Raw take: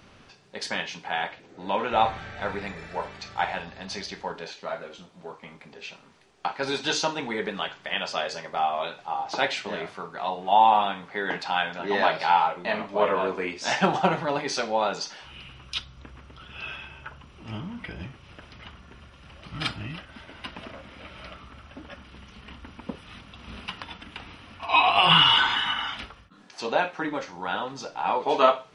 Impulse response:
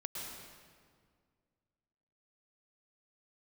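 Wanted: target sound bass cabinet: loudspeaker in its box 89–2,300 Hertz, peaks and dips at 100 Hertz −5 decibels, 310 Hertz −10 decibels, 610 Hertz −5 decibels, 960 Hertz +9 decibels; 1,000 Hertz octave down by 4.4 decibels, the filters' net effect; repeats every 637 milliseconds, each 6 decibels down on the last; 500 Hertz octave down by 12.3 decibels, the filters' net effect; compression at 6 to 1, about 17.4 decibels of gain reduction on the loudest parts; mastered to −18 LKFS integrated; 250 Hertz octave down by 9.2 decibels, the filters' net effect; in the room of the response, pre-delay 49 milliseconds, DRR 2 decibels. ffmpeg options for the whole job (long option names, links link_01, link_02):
-filter_complex "[0:a]equalizer=frequency=250:width_type=o:gain=-8,equalizer=frequency=500:width_type=o:gain=-8,equalizer=frequency=1000:width_type=o:gain=-7.5,acompressor=threshold=-35dB:ratio=6,aecho=1:1:637|1274|1911|2548|3185|3822:0.501|0.251|0.125|0.0626|0.0313|0.0157,asplit=2[link_01][link_02];[1:a]atrim=start_sample=2205,adelay=49[link_03];[link_02][link_03]afir=irnorm=-1:irlink=0,volume=-2dB[link_04];[link_01][link_04]amix=inputs=2:normalize=0,highpass=frequency=89:width=0.5412,highpass=frequency=89:width=1.3066,equalizer=frequency=100:width_type=q:width=4:gain=-5,equalizer=frequency=310:width_type=q:width=4:gain=-10,equalizer=frequency=610:width_type=q:width=4:gain=-5,equalizer=frequency=960:width_type=q:width=4:gain=9,lowpass=frequency=2300:width=0.5412,lowpass=frequency=2300:width=1.3066,volume=20.5dB"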